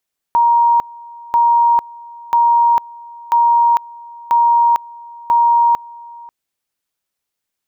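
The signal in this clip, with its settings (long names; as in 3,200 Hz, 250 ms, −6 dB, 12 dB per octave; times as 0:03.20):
tone at two levels in turn 941 Hz −8.5 dBFS, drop 23.5 dB, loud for 0.45 s, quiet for 0.54 s, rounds 6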